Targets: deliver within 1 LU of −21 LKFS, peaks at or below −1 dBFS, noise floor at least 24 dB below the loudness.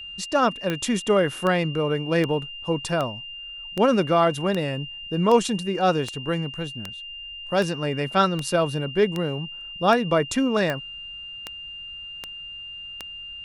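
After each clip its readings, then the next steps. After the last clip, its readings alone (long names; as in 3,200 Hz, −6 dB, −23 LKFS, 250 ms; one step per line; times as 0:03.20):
number of clicks 17; interfering tone 2,800 Hz; level of the tone −35 dBFS; integrated loudness −23.5 LKFS; sample peak −6.0 dBFS; target loudness −21.0 LKFS
→ click removal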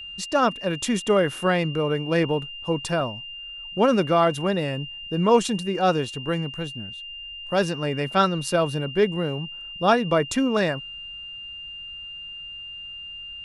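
number of clicks 0; interfering tone 2,800 Hz; level of the tone −35 dBFS
→ notch filter 2,800 Hz, Q 30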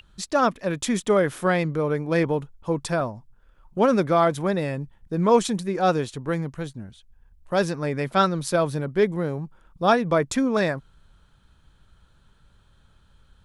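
interfering tone none found; integrated loudness −23.5 LKFS; sample peak −6.5 dBFS; target loudness −21.0 LKFS
→ level +2.5 dB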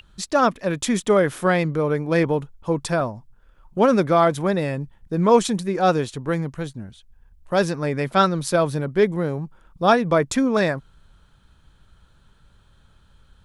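integrated loudness −21.0 LKFS; sample peak −4.0 dBFS; background noise floor −56 dBFS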